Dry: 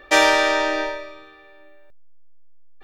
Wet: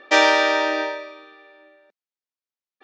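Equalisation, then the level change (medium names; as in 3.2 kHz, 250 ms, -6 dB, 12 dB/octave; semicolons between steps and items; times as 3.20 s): brick-wall FIR high-pass 190 Hz; low-pass 6.1 kHz 24 dB/octave; 0.0 dB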